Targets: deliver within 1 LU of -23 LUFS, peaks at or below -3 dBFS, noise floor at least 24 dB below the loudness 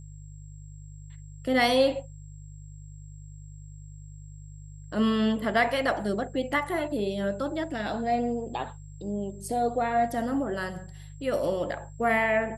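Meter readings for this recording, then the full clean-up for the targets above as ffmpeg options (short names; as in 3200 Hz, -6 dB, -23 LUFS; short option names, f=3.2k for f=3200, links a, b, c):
hum 50 Hz; harmonics up to 150 Hz; hum level -42 dBFS; steady tone 7600 Hz; tone level -58 dBFS; loudness -27.5 LUFS; peak -11.5 dBFS; loudness target -23.0 LUFS
-> -af "bandreject=f=50:t=h:w=4,bandreject=f=100:t=h:w=4,bandreject=f=150:t=h:w=4"
-af "bandreject=f=7.6k:w=30"
-af "volume=4.5dB"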